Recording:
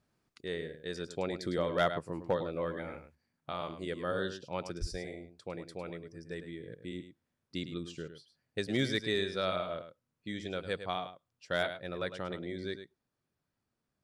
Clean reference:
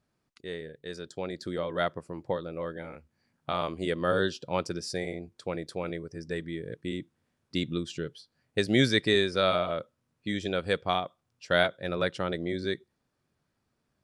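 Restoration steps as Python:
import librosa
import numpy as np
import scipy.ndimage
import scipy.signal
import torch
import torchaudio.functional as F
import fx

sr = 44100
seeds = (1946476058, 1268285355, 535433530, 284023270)

y = fx.fix_declip(x, sr, threshold_db=-20.0)
y = fx.highpass(y, sr, hz=140.0, slope=24, at=(4.8, 4.92), fade=0.02)
y = fx.fix_echo_inverse(y, sr, delay_ms=105, level_db=-10.5)
y = fx.gain(y, sr, db=fx.steps((0.0, 0.0), (3.15, 8.0)))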